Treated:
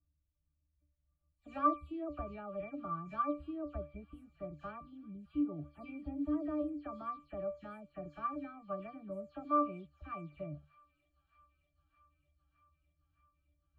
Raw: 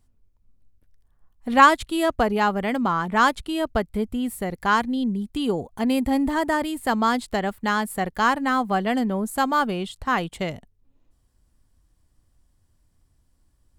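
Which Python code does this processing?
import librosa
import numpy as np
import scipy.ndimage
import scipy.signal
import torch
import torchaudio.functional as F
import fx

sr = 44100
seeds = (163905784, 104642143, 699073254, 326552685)

y = fx.spec_delay(x, sr, highs='early', ms=157)
y = fx.octave_resonator(y, sr, note='D', decay_s=0.25)
y = fx.echo_wet_highpass(y, sr, ms=615, feedback_pct=76, hz=3300.0, wet_db=-14)
y = y * 10.0 ** (-2.0 / 20.0)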